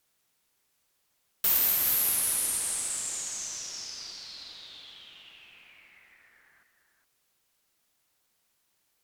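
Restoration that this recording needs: expander -66 dBFS, range -21 dB; inverse comb 413 ms -8.5 dB

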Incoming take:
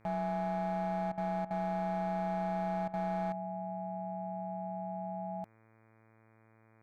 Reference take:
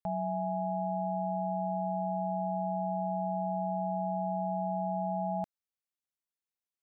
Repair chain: clip repair -30 dBFS; de-hum 111.1 Hz, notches 22; interpolate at 1.12/1.45/2.88 s, 55 ms; trim 0 dB, from 3.32 s +6.5 dB

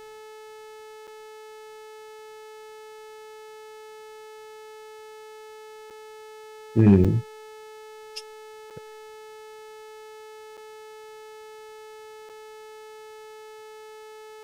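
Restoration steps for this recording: clip repair -8 dBFS; de-hum 432.9 Hz, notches 36; interpolate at 1.07/5.90/7.04/8.70/10.57/12.29 s, 6.7 ms

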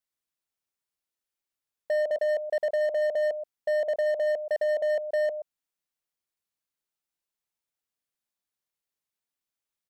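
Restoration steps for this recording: clip repair -23 dBFS; inverse comb 126 ms -13 dB

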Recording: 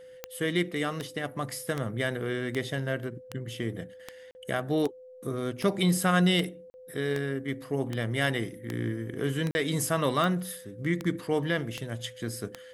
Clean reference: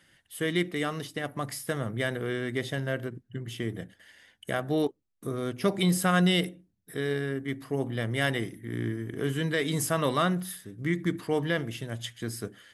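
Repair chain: de-click; band-stop 510 Hz, Q 30; interpolate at 4.31/6.70/9.51 s, 40 ms

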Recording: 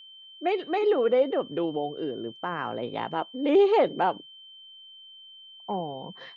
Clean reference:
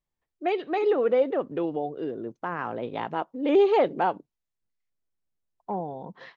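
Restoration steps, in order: band-stop 3.1 kHz, Q 30

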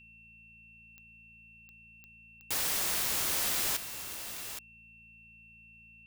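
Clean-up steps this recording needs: de-click; de-hum 56.2 Hz, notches 4; band-stop 2.7 kHz, Q 30; inverse comb 822 ms -10 dB

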